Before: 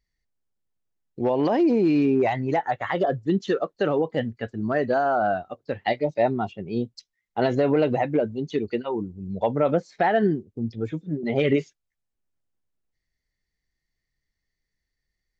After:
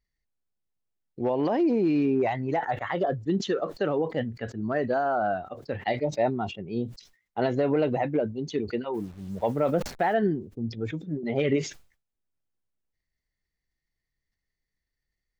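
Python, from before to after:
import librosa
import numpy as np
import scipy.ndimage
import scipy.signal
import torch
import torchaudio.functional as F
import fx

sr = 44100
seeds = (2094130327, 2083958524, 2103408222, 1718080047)

y = fx.delta_hold(x, sr, step_db=-45.0, at=(8.93, 10.13), fade=0.02)
y = fx.high_shelf(y, sr, hz=4000.0, db=-4.0)
y = fx.sustainer(y, sr, db_per_s=130.0)
y = y * librosa.db_to_amplitude(-3.5)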